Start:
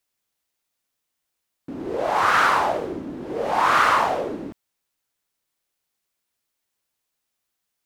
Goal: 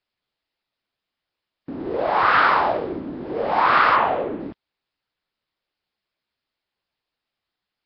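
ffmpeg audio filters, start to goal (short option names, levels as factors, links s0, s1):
-filter_complex "[0:a]asettb=1/sr,asplit=3[s0][s1][s2];[s0]atrim=end=3.954[s3];[s1]atrim=start=3.95:end=4.41,asetpts=PTS-STARTPTS,afade=t=in:d=0.004:c=qsin,afade=t=out:st=0.456:d=0.004:c=qsin,lowpass=f=3400:w=0.5412,lowpass=f=3400:w=1.3066[s4];[s2]atrim=start=4.406[s5];[s3][s4]acrossfade=d=0.004:c1=hsin:c2=qsin[s6];[s6][s5]acrossfade=d=0.004:c1=qsin:c2=hsin,volume=1.19" -ar 11025 -c:a nellymoser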